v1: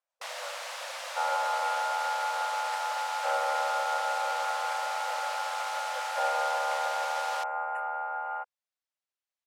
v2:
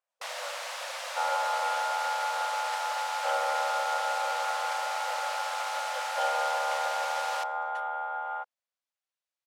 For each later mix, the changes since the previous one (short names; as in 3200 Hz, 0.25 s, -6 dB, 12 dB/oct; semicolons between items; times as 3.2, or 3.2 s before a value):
second sound: remove brick-wall FIR band-stop 2900–7000 Hz; reverb: on, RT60 1.2 s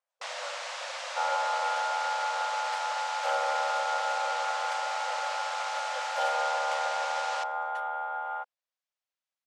first sound: add LPF 7900 Hz 24 dB/oct